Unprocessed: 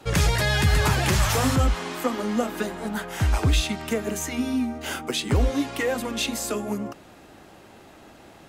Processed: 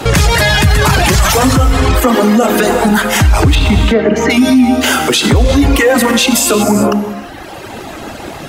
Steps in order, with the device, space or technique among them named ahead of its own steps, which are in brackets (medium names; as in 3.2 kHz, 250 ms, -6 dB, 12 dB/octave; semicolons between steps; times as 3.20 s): 3.55–4.30 s: distance through air 270 m; reverb removal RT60 1.7 s; gated-style reverb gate 390 ms flat, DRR 9 dB; loud club master (compression 2:1, threshold -25 dBFS, peak gain reduction 5.5 dB; hard clipper -17.5 dBFS, distortion -36 dB; loudness maximiser +26.5 dB); trim -1 dB